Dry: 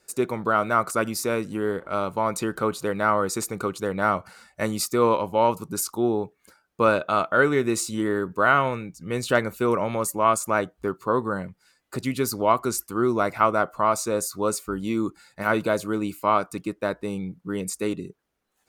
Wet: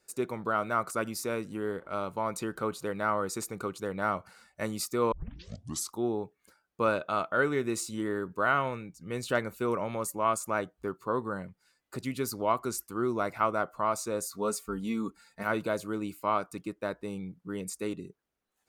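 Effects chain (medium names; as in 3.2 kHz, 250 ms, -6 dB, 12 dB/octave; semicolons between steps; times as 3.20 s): 5.12 s: tape start 0.80 s; 14.31–15.43 s: comb 4.4 ms, depth 62%; trim -7.5 dB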